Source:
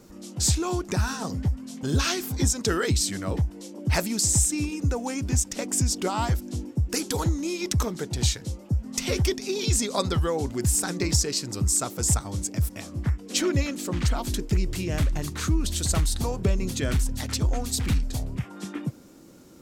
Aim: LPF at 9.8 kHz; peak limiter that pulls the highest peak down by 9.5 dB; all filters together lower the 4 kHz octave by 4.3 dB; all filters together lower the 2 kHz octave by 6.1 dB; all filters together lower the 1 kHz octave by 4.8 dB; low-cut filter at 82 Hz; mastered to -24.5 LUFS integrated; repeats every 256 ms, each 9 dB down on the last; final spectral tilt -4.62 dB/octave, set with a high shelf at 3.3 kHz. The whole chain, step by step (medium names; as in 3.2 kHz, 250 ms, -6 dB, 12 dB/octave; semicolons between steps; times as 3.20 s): high-pass 82 Hz; low-pass 9.8 kHz; peaking EQ 1 kHz -5 dB; peaking EQ 2 kHz -5.5 dB; treble shelf 3.3 kHz +4 dB; peaking EQ 4 kHz -8 dB; peak limiter -19 dBFS; feedback delay 256 ms, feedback 35%, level -9 dB; trim +5 dB